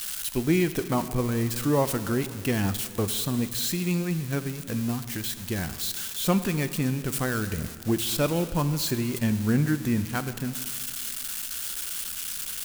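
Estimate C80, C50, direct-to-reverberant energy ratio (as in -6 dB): 13.0 dB, 12.5 dB, 11.0 dB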